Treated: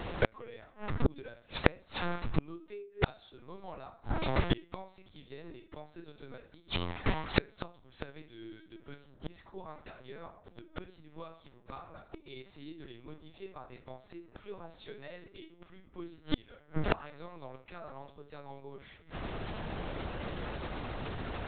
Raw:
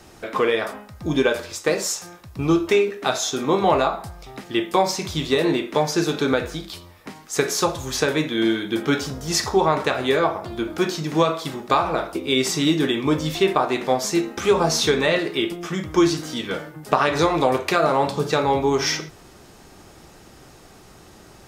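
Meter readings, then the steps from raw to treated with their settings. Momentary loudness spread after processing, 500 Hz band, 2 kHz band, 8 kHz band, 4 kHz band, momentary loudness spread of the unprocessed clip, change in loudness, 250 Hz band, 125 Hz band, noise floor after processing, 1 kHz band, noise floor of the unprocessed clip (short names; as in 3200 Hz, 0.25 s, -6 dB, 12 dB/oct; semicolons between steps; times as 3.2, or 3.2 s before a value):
17 LU, -20.0 dB, -15.0 dB, under -40 dB, -19.0 dB, 10 LU, -18.0 dB, -18.0 dB, -10.0 dB, -61 dBFS, -19.5 dB, -47 dBFS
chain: LPC vocoder at 8 kHz pitch kept; flipped gate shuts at -22 dBFS, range -36 dB; gain +8.5 dB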